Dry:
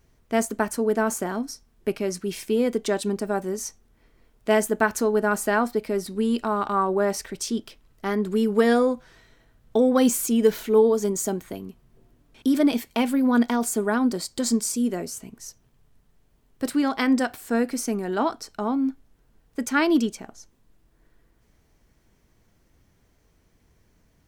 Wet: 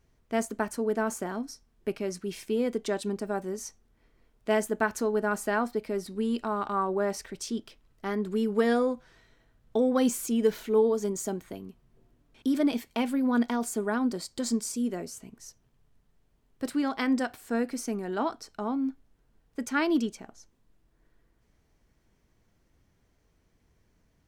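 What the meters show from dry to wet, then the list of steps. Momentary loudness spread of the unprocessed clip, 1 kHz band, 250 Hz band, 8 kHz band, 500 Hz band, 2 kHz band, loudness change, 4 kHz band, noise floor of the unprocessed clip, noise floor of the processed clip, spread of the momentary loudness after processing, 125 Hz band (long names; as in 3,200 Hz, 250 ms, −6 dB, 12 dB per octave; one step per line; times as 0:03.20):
12 LU, −5.5 dB, −5.5 dB, −7.5 dB, −5.5 dB, −5.5 dB, −5.5 dB, −6.0 dB, −64 dBFS, −69 dBFS, 12 LU, −5.5 dB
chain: high-shelf EQ 9,600 Hz −6 dB
level −5.5 dB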